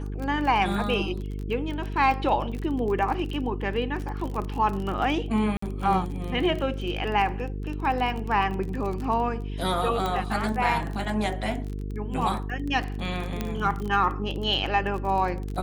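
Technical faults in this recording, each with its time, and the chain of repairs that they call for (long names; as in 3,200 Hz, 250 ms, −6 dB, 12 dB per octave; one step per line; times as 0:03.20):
mains buzz 50 Hz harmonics 9 −32 dBFS
surface crackle 25 per second −30 dBFS
0:05.57–0:05.62: drop-out 54 ms
0:10.06: click −15 dBFS
0:13.41: click −14 dBFS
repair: click removal
hum removal 50 Hz, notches 9
repair the gap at 0:05.57, 54 ms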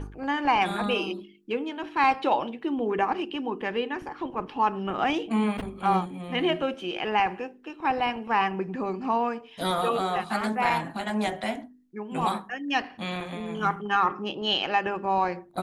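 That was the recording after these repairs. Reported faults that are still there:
none of them is left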